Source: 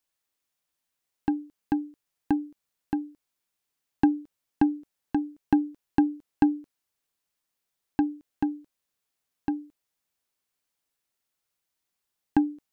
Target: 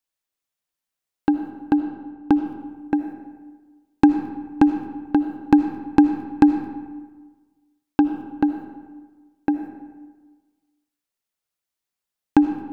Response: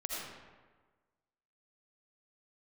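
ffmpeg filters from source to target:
-filter_complex "[0:a]asettb=1/sr,asplit=3[a][b][c];[a]atrim=end=1.734[d];[b]atrim=start=1.73:end=2.46,asetpts=PTS-STARTPTS,afade=t=in:d=0.004:c=qsin,afade=t=out:st=0.726:d=0.004:c=qsin,aemphasis=mode=reproduction:type=75fm[e];[c]atrim=start=2.456[f];[d][e]acrossfade=d=0.004:c1=hsin:c2=qsin[g];[g][f]acrossfade=d=0.004:c1=qsin:c2=hsin,agate=range=-11dB:threshold=-41dB:ratio=16:detection=peak,asplit=2[h][i];[1:a]atrim=start_sample=2205[j];[i][j]afir=irnorm=-1:irlink=0,volume=-7dB[k];[h][k]amix=inputs=2:normalize=0,volume=5dB"

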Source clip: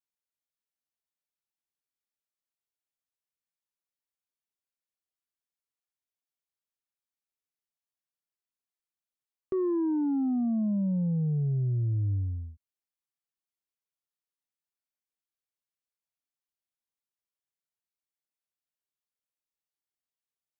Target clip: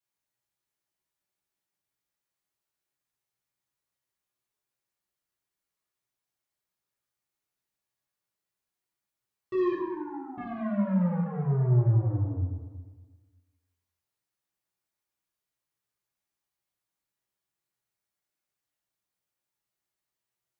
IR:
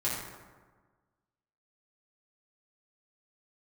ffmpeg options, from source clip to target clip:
-filter_complex "[0:a]asettb=1/sr,asplit=3[a][b][c];[a]atrim=end=9.724[d];[b]atrim=start=9.72:end=10.38,asetpts=PTS-STARTPTS,afade=t=in:d=0.004:c=qsin,afade=t=out:st=0.656:d=0.004:c=qsin,highpass=980[e];[c]atrim=start=10.376[f];[d][e]acrossfade=d=0.004:c1=hsin:c2=qsin[g];[g][f]acrossfade=d=0.004:c1=qsin:c2=hsin,asoftclip=type=tanh:threshold=-35.5dB[h];[1:a]atrim=start_sample=2205[i];[h][i]afir=irnorm=-1:irlink=0"

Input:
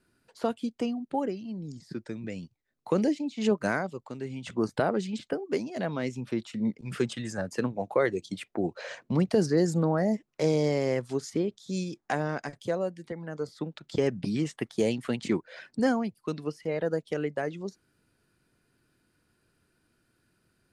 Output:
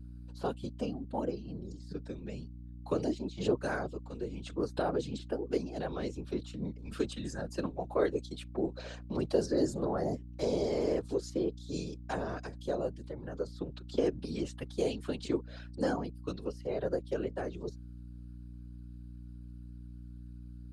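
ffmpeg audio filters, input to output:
-filter_complex "[0:a]equalizer=f=400:t=o:w=0.33:g=6,equalizer=f=2k:t=o:w=0.33:g=-10,equalizer=f=4k:t=o:w=0.33:g=5,acrossover=split=240[a][b];[a]acompressor=threshold=-36dB:ratio=10[c];[c][b]amix=inputs=2:normalize=0,afftfilt=real='hypot(re,im)*cos(2*PI*random(0))':imag='hypot(re,im)*sin(2*PI*random(1))':win_size=512:overlap=0.75,aeval=exprs='val(0)+0.00562*(sin(2*PI*60*n/s)+sin(2*PI*2*60*n/s)/2+sin(2*PI*3*60*n/s)/3+sin(2*PI*4*60*n/s)/4+sin(2*PI*5*60*n/s)/5)':c=same"

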